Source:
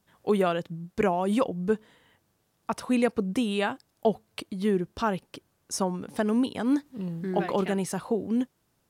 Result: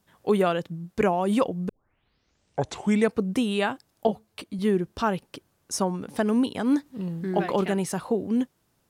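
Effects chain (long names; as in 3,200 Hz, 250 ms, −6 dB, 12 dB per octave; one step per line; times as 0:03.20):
0:01.69: tape start 1.46 s
0:04.07–0:04.59: string-ensemble chorus
level +2 dB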